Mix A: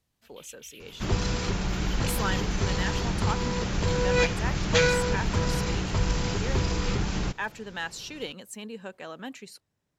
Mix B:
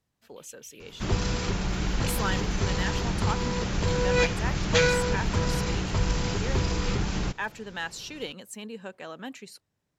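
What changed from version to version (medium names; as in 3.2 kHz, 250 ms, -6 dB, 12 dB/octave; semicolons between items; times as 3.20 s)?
first sound -7.5 dB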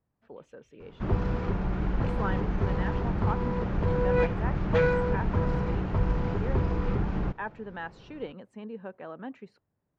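master: add low-pass 1.3 kHz 12 dB/octave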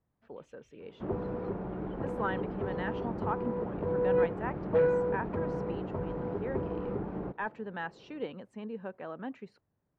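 second sound: add band-pass filter 440 Hz, Q 1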